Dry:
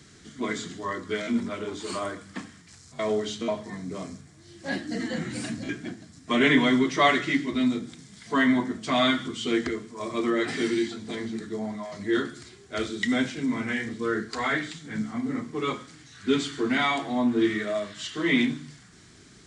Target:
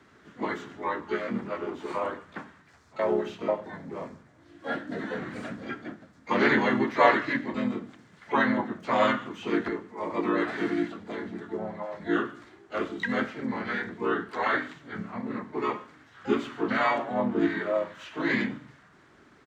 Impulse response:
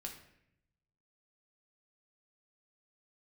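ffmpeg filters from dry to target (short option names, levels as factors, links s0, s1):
-filter_complex "[0:a]acrossover=split=350 2200:gain=0.224 1 0.0891[s0][s1][s2];[s0][s1][s2]amix=inputs=3:normalize=0,asplit=4[s3][s4][s5][s6];[s4]asetrate=22050,aresample=44100,atempo=2,volume=0.178[s7];[s5]asetrate=37084,aresample=44100,atempo=1.18921,volume=0.891[s8];[s6]asetrate=88200,aresample=44100,atempo=0.5,volume=0.178[s9];[s3][s7][s8][s9]amix=inputs=4:normalize=0"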